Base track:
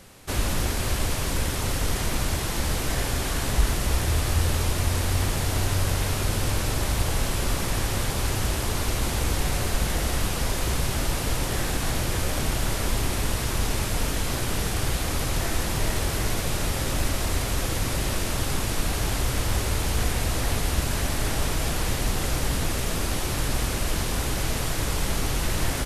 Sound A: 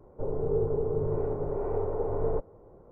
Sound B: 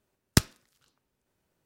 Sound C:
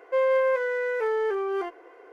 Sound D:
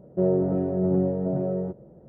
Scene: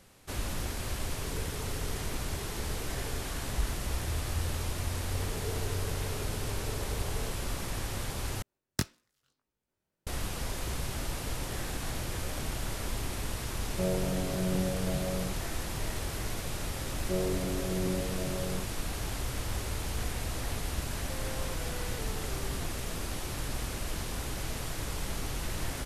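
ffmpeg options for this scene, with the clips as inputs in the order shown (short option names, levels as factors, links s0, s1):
-filter_complex "[1:a]asplit=2[s0][s1];[4:a]asplit=2[s2][s3];[0:a]volume=0.335[s4];[s0]asuperstop=centerf=720:order=4:qfactor=0.82[s5];[2:a]flanger=delay=17:depth=5.5:speed=1.8[s6];[s2]equalizer=f=330:w=2.5:g=-11.5[s7];[3:a]acompressor=threshold=0.0316:ratio=6:attack=3.2:release=140:knee=1:detection=peak[s8];[s4]asplit=2[s9][s10];[s9]atrim=end=8.424[s11];[s6]atrim=end=1.65,asetpts=PTS-STARTPTS,volume=0.531[s12];[s10]atrim=start=10.066[s13];[s5]atrim=end=2.91,asetpts=PTS-STARTPTS,volume=0.2,afade=t=in:d=0.004:c=hsin,afade=t=out:st=2.906:d=0.004:c=hsin,adelay=820[s14];[s1]atrim=end=2.91,asetpts=PTS-STARTPTS,volume=0.2,afade=t=in:d=0.004:c=hsin,afade=t=out:st=2.906:d=0.004:c=hsin,adelay=4920[s15];[s7]atrim=end=2.08,asetpts=PTS-STARTPTS,volume=0.531,afade=t=in:d=0.004:c=hsin,afade=t=out:st=2.076:d=0.004:c=hsin,adelay=13610[s16];[s3]atrim=end=2.08,asetpts=PTS-STARTPTS,volume=0.316,afade=t=in:d=0.004:c=hsin,afade=t=out:st=2.076:d=0.004:c=hsin,adelay=16920[s17];[s8]atrim=end=2.12,asetpts=PTS-STARTPTS,volume=0.2,afade=t=in:d=0.004:c=hsin,afade=t=out:st=2.116:d=0.004:c=hsin,adelay=20980[s18];[s11][s12]acrossfade=d=0.004:c1=hsin:c2=hsin[s19];[s19][s13]acrossfade=d=0.004:c1=hsin:c2=hsin[s20];[s20][s14][s15][s16][s17][s18]amix=inputs=6:normalize=0"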